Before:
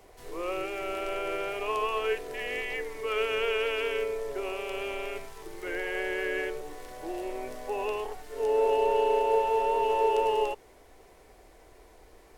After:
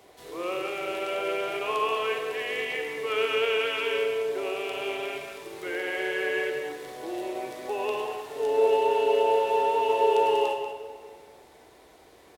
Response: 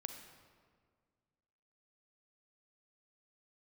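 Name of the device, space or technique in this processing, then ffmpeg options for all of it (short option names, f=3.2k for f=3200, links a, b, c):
PA in a hall: -filter_complex "[0:a]highpass=110,equalizer=f=3.6k:t=o:w=0.47:g=6,aecho=1:1:189:0.316[a];[1:a]atrim=start_sample=2205[b];[a][b]afir=irnorm=-1:irlink=0,volume=4.5dB"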